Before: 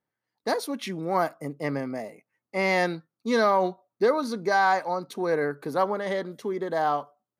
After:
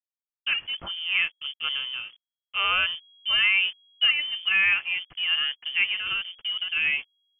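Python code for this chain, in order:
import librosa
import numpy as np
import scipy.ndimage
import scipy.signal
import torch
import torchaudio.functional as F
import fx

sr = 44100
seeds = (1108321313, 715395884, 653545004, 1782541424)

y = fx.backlash(x, sr, play_db=-36.0)
y = fx.freq_invert(y, sr, carrier_hz=3300)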